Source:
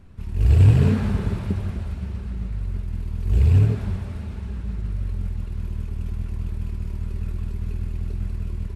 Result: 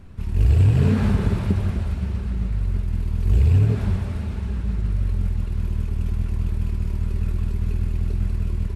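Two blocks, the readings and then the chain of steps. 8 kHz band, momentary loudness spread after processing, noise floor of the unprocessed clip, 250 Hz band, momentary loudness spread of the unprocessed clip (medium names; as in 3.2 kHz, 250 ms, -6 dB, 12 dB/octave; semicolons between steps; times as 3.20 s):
no reading, 9 LU, -32 dBFS, +2.0 dB, 14 LU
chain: compression 6:1, threshold -17 dBFS, peak gain reduction 8 dB; trim +4.5 dB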